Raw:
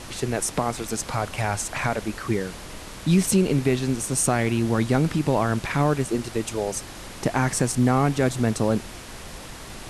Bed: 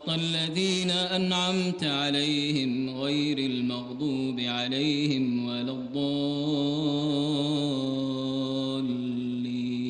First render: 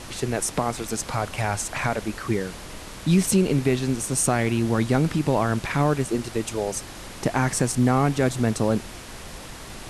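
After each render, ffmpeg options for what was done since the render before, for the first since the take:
-af anull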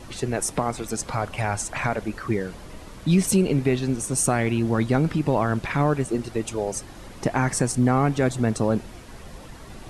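-af "afftdn=nr=9:nf=-39"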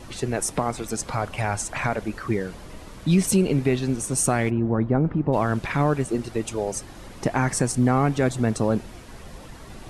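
-filter_complex "[0:a]asplit=3[s0][s1][s2];[s0]afade=t=out:st=4.49:d=0.02[s3];[s1]lowpass=1100,afade=t=in:st=4.49:d=0.02,afade=t=out:st=5.32:d=0.02[s4];[s2]afade=t=in:st=5.32:d=0.02[s5];[s3][s4][s5]amix=inputs=3:normalize=0"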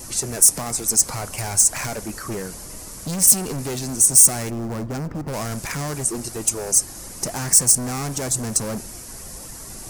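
-af "asoftclip=type=hard:threshold=0.0562,aexciter=amount=6.5:drive=6:freq=5000"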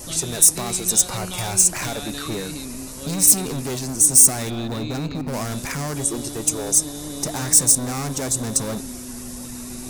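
-filter_complex "[1:a]volume=0.447[s0];[0:a][s0]amix=inputs=2:normalize=0"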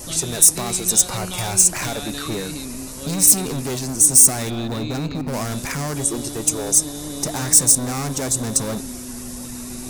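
-af "volume=1.19,alimiter=limit=0.891:level=0:latency=1"

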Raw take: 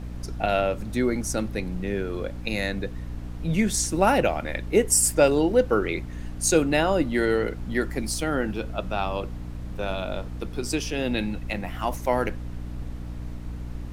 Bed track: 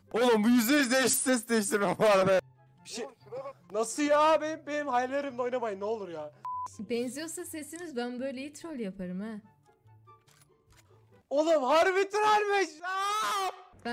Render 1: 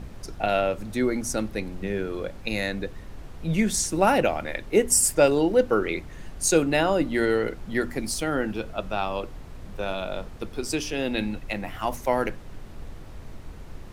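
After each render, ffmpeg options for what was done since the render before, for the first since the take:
-af "bandreject=f=60:t=h:w=4,bandreject=f=120:t=h:w=4,bandreject=f=180:t=h:w=4,bandreject=f=240:t=h:w=4,bandreject=f=300:t=h:w=4"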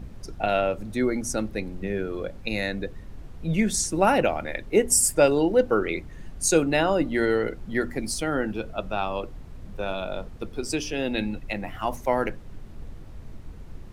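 -af "afftdn=nr=6:nf=-41"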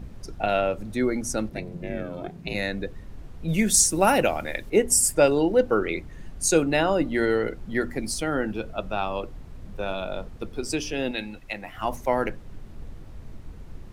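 -filter_complex "[0:a]asplit=3[s0][s1][s2];[s0]afade=t=out:st=1.49:d=0.02[s3];[s1]aeval=exprs='val(0)*sin(2*PI*170*n/s)':c=same,afade=t=in:st=1.49:d=0.02,afade=t=out:st=2.53:d=0.02[s4];[s2]afade=t=in:st=2.53:d=0.02[s5];[s3][s4][s5]amix=inputs=3:normalize=0,asettb=1/sr,asplit=3[s6][s7][s8];[s6]atrim=end=3.484[s9];[s7]atrim=start=3.48:end=4.7,asetpts=PTS-STARTPTS,afade=t=in:d=0.004:c=qsin,afade=t=out:st=1.216:d=0.004:c=qsin,aemphasis=mode=production:type=50kf[s10];[s8]atrim=start=4.696[s11];[s9][s10]acrossfade=d=0.004:c1=hsin:c2=qsin[s12];[s12][s11]acrossfade=d=0.004:c1=qsin:c2=hsin,asettb=1/sr,asplit=3[s13][s14][s15];[s13]atrim=end=11.114[s16];[s14]atrim=start=11.11:end=11.78,asetpts=PTS-STARTPTS,afade=t=in:d=0.004:c=qsin,afade=t=out:st=0.666:d=0.004:c=qsin,lowshelf=f=480:g=-10[s17];[s15]atrim=start=11.776[s18];[s16][s17]acrossfade=d=0.004:c1=hsin:c2=qsin[s19];[s19][s18]acrossfade=d=0.004:c1=qsin:c2=hsin"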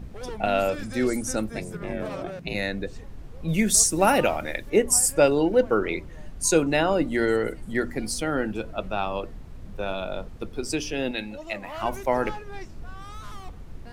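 -filter_complex "[1:a]volume=0.211[s0];[0:a][s0]amix=inputs=2:normalize=0"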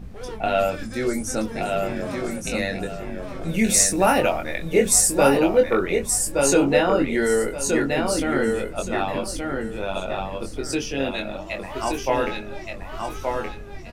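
-filter_complex "[0:a]asplit=2[s0][s1];[s1]adelay=22,volume=0.631[s2];[s0][s2]amix=inputs=2:normalize=0,asplit=2[s3][s4];[s4]aecho=0:1:1173|2346|3519|4692:0.631|0.164|0.0427|0.0111[s5];[s3][s5]amix=inputs=2:normalize=0"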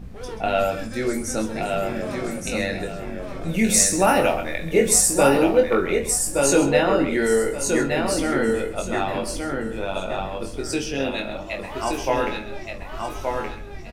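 -filter_complex "[0:a]asplit=2[s0][s1];[s1]adelay=49,volume=0.224[s2];[s0][s2]amix=inputs=2:normalize=0,aecho=1:1:132:0.224"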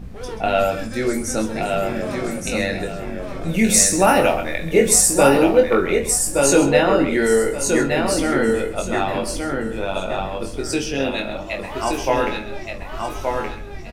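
-af "volume=1.41,alimiter=limit=0.891:level=0:latency=1"

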